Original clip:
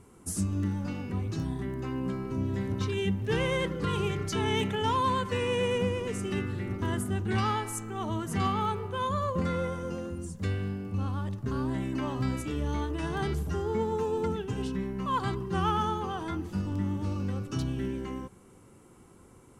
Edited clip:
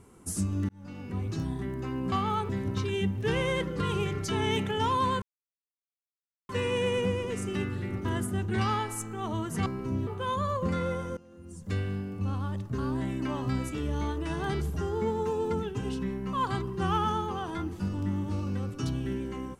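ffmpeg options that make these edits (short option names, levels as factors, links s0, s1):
-filter_complex "[0:a]asplit=8[s0][s1][s2][s3][s4][s5][s6][s7];[s0]atrim=end=0.69,asetpts=PTS-STARTPTS,afade=t=out:st=0.686:d=0.004:c=hsin[s8];[s1]atrim=start=0.69:end=2.122,asetpts=PTS-STARTPTS,afade=t=in:d=0.55[s9];[s2]atrim=start=8.428:end=8.802[s10];[s3]atrim=start=2.528:end=5.26,asetpts=PTS-STARTPTS,afade=t=out:st=2.728:d=0.004:c=hsin,apad=pad_dur=1.27[s11];[s4]atrim=start=5.26:end=8.432,asetpts=PTS-STARTPTS,afade=t=in:d=0.004:c=hsin[s12];[s5]atrim=start=2.118:end=2.532[s13];[s6]atrim=start=8.798:end=9.9,asetpts=PTS-STARTPTS,afade=t=out:st=1.098:d=0.004:c=hsin:silence=0.1[s14];[s7]atrim=start=9.9,asetpts=PTS-STARTPTS,afade=t=in:d=0.56:c=qua:silence=0.1[s15];[s8][s9]concat=n=2:v=0:a=1[s16];[s16][s10]acrossfade=d=0.004:c1=hsin:c2=hsin[s17];[s11][s12]concat=n=2:v=0:a=1[s18];[s17][s18]acrossfade=d=0.004:c1=hsin:c2=hsin[s19];[s19][s13]acrossfade=d=0.004:c1=hsin:c2=hsin[s20];[s14][s15]concat=n=2:v=0:a=1[s21];[s20][s21]acrossfade=d=0.004:c1=hsin:c2=hsin"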